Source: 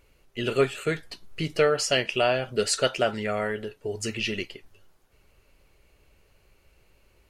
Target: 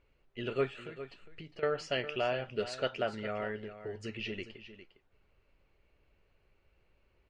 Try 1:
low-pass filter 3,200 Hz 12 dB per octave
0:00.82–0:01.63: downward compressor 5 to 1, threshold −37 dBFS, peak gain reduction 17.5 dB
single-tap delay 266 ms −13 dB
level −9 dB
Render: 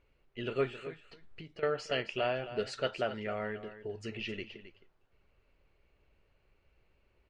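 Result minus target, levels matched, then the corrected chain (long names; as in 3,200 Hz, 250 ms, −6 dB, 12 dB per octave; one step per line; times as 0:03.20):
echo 140 ms early
low-pass filter 3,200 Hz 12 dB per octave
0:00.82–0:01.63: downward compressor 5 to 1, threshold −37 dBFS, peak gain reduction 17.5 dB
single-tap delay 406 ms −13 dB
level −9 dB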